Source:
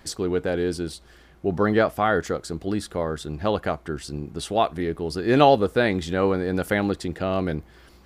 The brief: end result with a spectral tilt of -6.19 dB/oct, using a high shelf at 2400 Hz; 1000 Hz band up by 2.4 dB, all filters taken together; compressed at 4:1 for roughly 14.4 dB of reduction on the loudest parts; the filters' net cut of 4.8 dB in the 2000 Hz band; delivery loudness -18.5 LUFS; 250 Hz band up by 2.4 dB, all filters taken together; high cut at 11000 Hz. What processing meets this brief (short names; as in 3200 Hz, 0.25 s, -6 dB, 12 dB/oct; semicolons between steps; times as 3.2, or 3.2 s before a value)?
LPF 11000 Hz; bell 250 Hz +3 dB; bell 1000 Hz +5.5 dB; bell 2000 Hz -8 dB; high shelf 2400 Hz -3 dB; compressor 4:1, threshold -26 dBFS; gain +12.5 dB